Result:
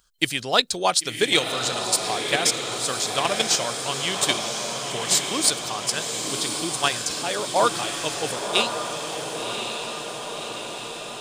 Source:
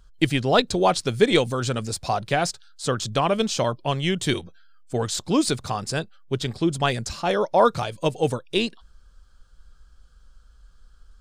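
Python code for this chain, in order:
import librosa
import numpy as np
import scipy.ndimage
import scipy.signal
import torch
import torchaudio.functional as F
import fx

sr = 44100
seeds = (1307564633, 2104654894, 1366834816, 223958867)

p1 = fx.tilt_eq(x, sr, slope=3.5)
p2 = fx.echo_diffused(p1, sr, ms=1072, feedback_pct=63, wet_db=-3.5)
p3 = fx.level_steps(p2, sr, step_db=19)
p4 = p2 + F.gain(torch.from_numpy(p3), -2.0).numpy()
y = F.gain(torch.from_numpy(p4), -5.0).numpy()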